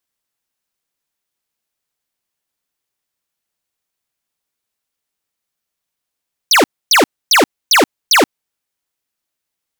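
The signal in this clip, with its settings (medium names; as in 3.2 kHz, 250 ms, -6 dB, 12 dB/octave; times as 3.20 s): burst of laser zaps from 6.5 kHz, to 230 Hz, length 0.13 s square, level -9 dB, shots 5, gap 0.27 s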